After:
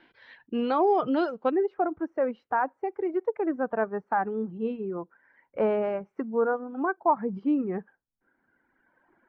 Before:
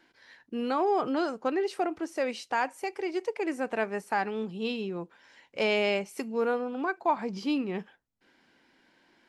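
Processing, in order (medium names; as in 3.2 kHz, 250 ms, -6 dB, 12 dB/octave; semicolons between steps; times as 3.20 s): reverb removal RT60 2 s; Chebyshev low-pass 3.4 kHz, order 3, from 1.50 s 1.5 kHz; dynamic bell 2.2 kHz, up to -6 dB, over -49 dBFS, Q 1.4; trim +5 dB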